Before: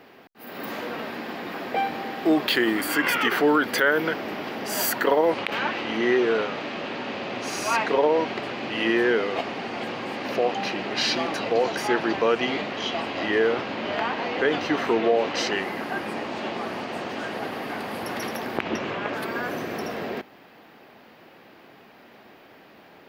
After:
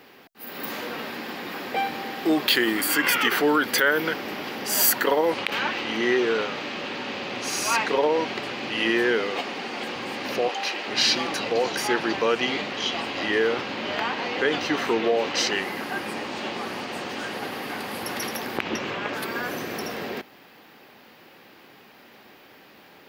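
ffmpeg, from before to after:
-filter_complex "[0:a]asettb=1/sr,asplit=3[a][b][c];[a]atrim=end=9.314[d];[b]atrim=start=9.31:end=9.96,asetpts=PTS-STARTPTS,afade=t=in:d=0.004:c=qsin,afade=t=out:st=0.646:d=0.004:c=qsin,highpass=170[e];[c]atrim=start=9.956[f];[d][e]acrossfade=d=0.004:c1=hsin:c2=qsin[g];[g][f]acrossfade=d=0.004:c1=qsin:c2=hsin,asettb=1/sr,asplit=3[h][i][j];[h]atrim=end=10.484[k];[i]atrim=start=10.48:end=10.88,asetpts=PTS-STARTPTS,afade=t=in:d=0.004:c=qsin,afade=t=out:st=0.396:d=0.004:c=qsin,highpass=440[l];[j]atrim=start=10.876[m];[k][l]acrossfade=d=0.004:c1=hsin:c2=qsin[n];[n][m]acrossfade=d=0.004:c1=qsin:c2=hsin,highshelf=f=3k:g=9,bandreject=f=660:w=12,volume=-1.5dB"

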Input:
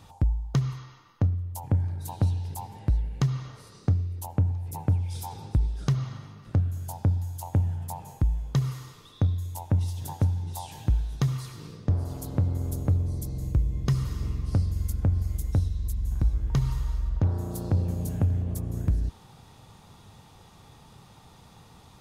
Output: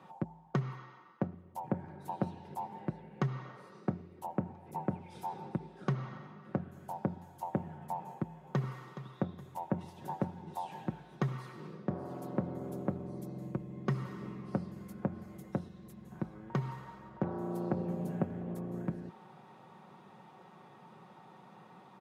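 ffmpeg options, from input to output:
-filter_complex "[0:a]asplit=2[a][b];[b]afade=t=in:st=8.01:d=0.01,afade=t=out:st=8.81:d=0.01,aecho=0:1:420|840|1260|1680:0.223872|0.100742|0.0453341|0.0204003[c];[a][c]amix=inputs=2:normalize=0,highpass=f=110:w=0.5412,highpass=f=110:w=1.3066,acrossover=split=180 2300:gain=0.141 1 0.1[d][e][f];[d][e][f]amix=inputs=3:normalize=0,aecho=1:1:5.4:0.48"

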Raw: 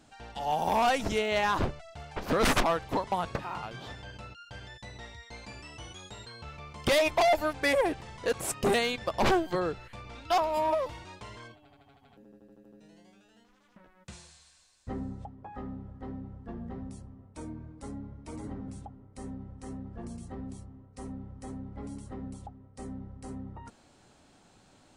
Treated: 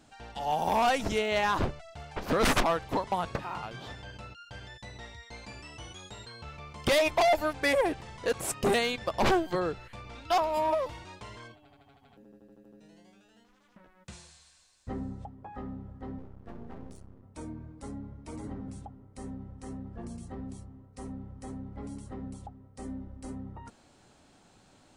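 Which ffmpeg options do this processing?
-filter_complex "[0:a]asettb=1/sr,asplit=3[a][b][c];[a]atrim=end=16.184[d];[b]atrim=start=16.18:end=17.23,asetpts=PTS-STARTPTS,afade=t=in:d=0.004:c=qsin,afade=t=out:st=1.046:d=0.004:c=qsin,aeval=exprs='max(val(0),0)':c=same[e];[c]atrim=start=17.226[f];[d][e]acrossfade=d=0.004:c1=hsin:c2=qsin[g];[g][f]acrossfade=d=0.004:c1=qsin:c2=hsin,asettb=1/sr,asplit=3[h][i][j];[h]atrim=end=22.834[k];[i]atrim=start=22.83:end=23.32,asetpts=PTS-STARTPTS,afade=t=in:d=0.004:c=qsin,afade=t=out:st=0.486:d=0.004:c=qsin,aecho=1:1:3.4:0.53,atrim=end_sample=21609[l];[j]atrim=start=23.316[m];[k][l]acrossfade=d=0.004:c1=hsin:c2=qsin[n];[n][m]acrossfade=d=0.004:c1=qsin:c2=hsin"

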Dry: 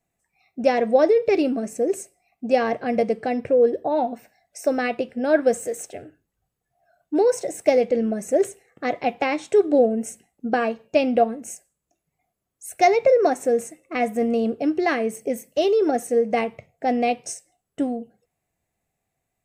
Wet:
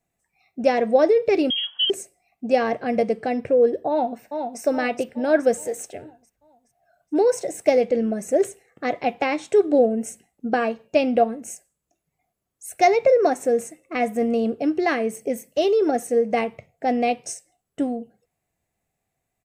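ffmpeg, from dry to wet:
-filter_complex "[0:a]asettb=1/sr,asplit=3[a][b][c];[a]atrim=end=1.504[d];[b]atrim=start=1.5:end=1.9,asetpts=PTS-STARTPTS,afade=t=in:d=0.004:c=qsin,afade=t=out:st=0.396:d=0.004:c=qsin,lowpass=f=3k:t=q:w=0.5098,lowpass=f=3k:t=q:w=0.6013,lowpass=f=3k:t=q:w=0.9,lowpass=f=3k:t=q:w=2.563,afreqshift=-3500[e];[c]atrim=start=1.896[f];[d][e]acrossfade=d=0.004:c1=hsin:c2=qsin[g];[g][f]acrossfade=d=0.004:c1=qsin:c2=hsin,asplit=2[h][i];[i]afade=t=in:st=3.89:d=0.01,afade=t=out:st=4.61:d=0.01,aecho=0:1:420|840|1260|1680|2100|2520:0.501187|0.250594|0.125297|0.0626484|0.0313242|0.0156621[j];[h][j]amix=inputs=2:normalize=0"

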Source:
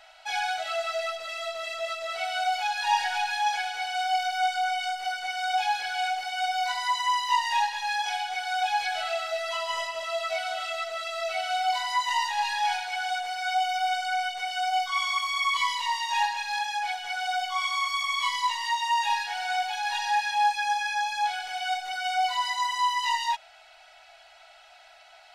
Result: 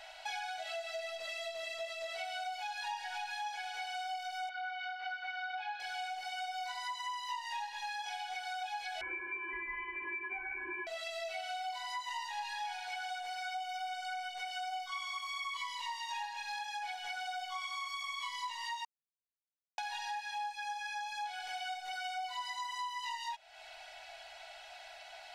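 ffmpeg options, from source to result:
-filter_complex "[0:a]asettb=1/sr,asplit=3[a][b][c];[a]atrim=end=4.494[d];[b]atrim=start=4.49:end=5.8,asetpts=PTS-STARTPTS,afade=t=in:d=0.004:c=qsin,afade=t=out:st=1.306:d=0.004:c=qsin,highpass=f=360:w=0.5412,highpass=f=360:w=1.3066,equalizer=f=370:t=q:w=4:g=-7,equalizer=f=610:t=q:w=4:g=-8,equalizer=f=1.4k:t=q:w=4:g=7,equalizer=f=3.3k:t=q:w=4:g=-4,lowpass=f=3.8k:w=0.5412,lowpass=f=3.8k:w=1.3066[e];[c]atrim=start=5.796[f];[d][e]acrossfade=d=0.004:c1=hsin:c2=qsin[g];[g][f]acrossfade=d=0.004:c1=qsin:c2=hsin,asettb=1/sr,asplit=3[h][i][j];[h]atrim=end=9.014[k];[i]atrim=start=9.01:end=10.87,asetpts=PTS-STARTPTS,afade=t=in:d=0.004:c=qsin,afade=t=out:st=1.856:d=0.004:c=qsin,lowpass=f=2.6k:t=q:w=0.5098,lowpass=f=2.6k:t=q:w=0.6013,lowpass=f=2.6k:t=q:w=0.9,lowpass=f=2.6k:t=q:w=2.563,afreqshift=-3000[l];[j]atrim=start=10.866[m];[k][l]acrossfade=d=0.004:c1=hsin:c2=qsin[n];[n][m]acrossfade=d=0.004:c1=qsin:c2=hsin,asplit=3[o][p][q];[o]atrim=end=18.85,asetpts=PTS-STARTPTS,afade=t=out:st=18.846:d=0.004:c=hsin[r];[p]atrim=start=18.85:end=19.78,asetpts=PTS-STARTPTS,volume=0[s];[q]atrim=start=19.78,asetpts=PTS-STARTPTS,afade=t=in:d=0.004:c=hsin[t];[r][s][t]concat=n=3:v=0:a=1,bandreject=f=1.3k:w=8.9,acompressor=threshold=-41dB:ratio=6,volume=2dB"

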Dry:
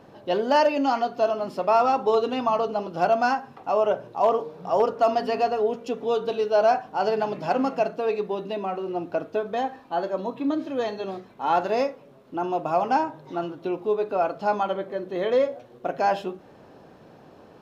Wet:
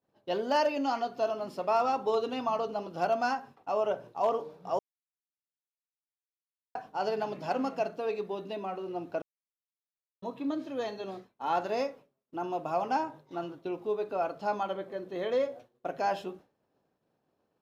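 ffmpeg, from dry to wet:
-filter_complex "[0:a]asplit=5[a][b][c][d][e];[a]atrim=end=4.79,asetpts=PTS-STARTPTS,afade=t=out:st=4.786:d=0.004:c=hsin[f];[b]atrim=start=4.79:end=6.75,asetpts=PTS-STARTPTS,volume=0[g];[c]atrim=start=6.75:end=9.22,asetpts=PTS-STARTPTS,afade=t=in:d=0.004:c=hsin,afade=t=out:st=2.466:d=0.004:c=hsin[h];[d]atrim=start=9.22:end=10.22,asetpts=PTS-STARTPTS,volume=0[i];[e]atrim=start=10.22,asetpts=PTS-STARTPTS,afade=t=in:d=0.004:c=hsin[j];[f][g][h][i][j]concat=n=5:v=0:a=1,agate=range=-33dB:threshold=-36dB:ratio=3:detection=peak,highshelf=f=4.7k:g=5.5,volume=-7.5dB"

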